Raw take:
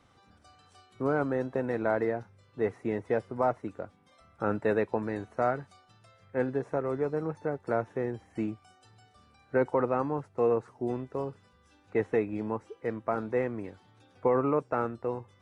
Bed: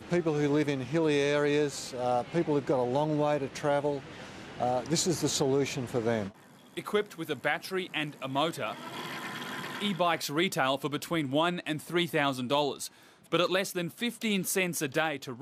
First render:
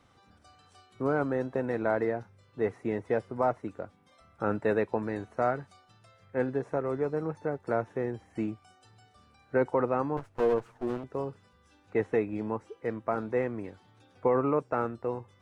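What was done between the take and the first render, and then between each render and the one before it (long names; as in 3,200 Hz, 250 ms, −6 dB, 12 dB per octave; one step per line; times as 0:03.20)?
0:10.17–0:11.04: lower of the sound and its delayed copy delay 8.7 ms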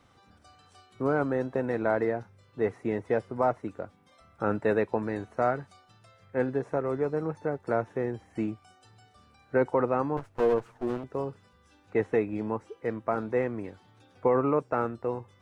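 level +1.5 dB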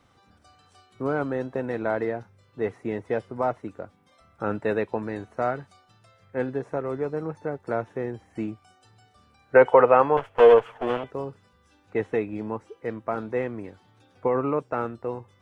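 0:09.55–0:11.10: gain on a spectral selection 390–3,500 Hz +11 dB
dynamic equaliser 3,200 Hz, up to +6 dB, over −51 dBFS, Q 2.1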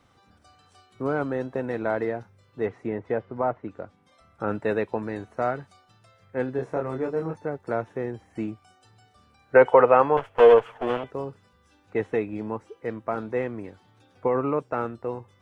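0:02.65–0:04.48: treble cut that deepens with the level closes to 2,000 Hz, closed at −25 dBFS
0:06.56–0:07.36: double-tracking delay 24 ms −3.5 dB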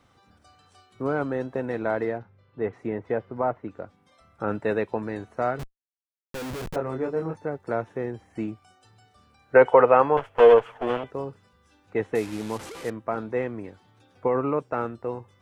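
0:02.18–0:02.73: high-frequency loss of the air 260 metres
0:05.59–0:06.76: comparator with hysteresis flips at −41 dBFS
0:12.15–0:12.90: linear delta modulator 64 kbit/s, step −34 dBFS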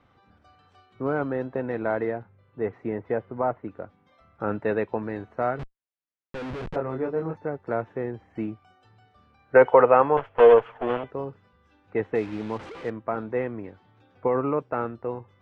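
low-pass filter 2,900 Hz 12 dB per octave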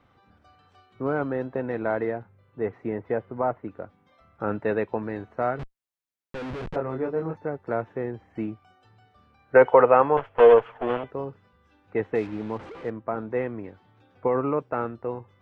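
0:12.27–0:13.31: high-shelf EQ 2,200 Hz −7.5 dB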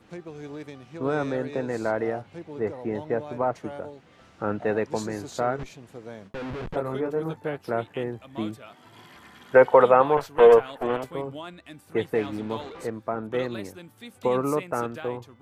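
mix in bed −11.5 dB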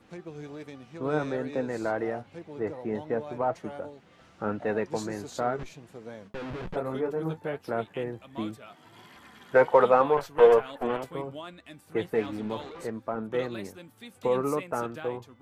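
in parallel at −11.5 dB: soft clipping −21 dBFS, distortion −5 dB
on the sum: flanger 1.3 Hz, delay 3.4 ms, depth 3.3 ms, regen +67%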